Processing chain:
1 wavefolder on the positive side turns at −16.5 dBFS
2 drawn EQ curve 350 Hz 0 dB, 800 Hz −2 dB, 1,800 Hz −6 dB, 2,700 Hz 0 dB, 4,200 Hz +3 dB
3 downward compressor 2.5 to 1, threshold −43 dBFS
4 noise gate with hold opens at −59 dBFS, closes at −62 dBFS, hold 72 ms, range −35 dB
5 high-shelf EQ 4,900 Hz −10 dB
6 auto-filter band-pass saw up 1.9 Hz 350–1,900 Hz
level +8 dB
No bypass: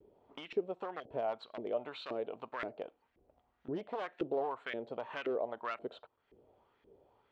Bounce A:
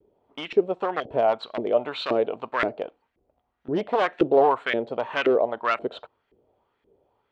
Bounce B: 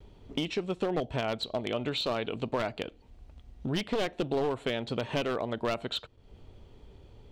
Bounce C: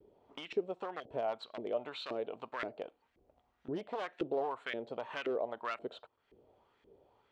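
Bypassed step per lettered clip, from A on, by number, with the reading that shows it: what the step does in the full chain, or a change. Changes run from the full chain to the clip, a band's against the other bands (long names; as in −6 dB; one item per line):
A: 3, average gain reduction 12.5 dB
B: 6, 125 Hz band +11.5 dB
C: 5, 4 kHz band +3.0 dB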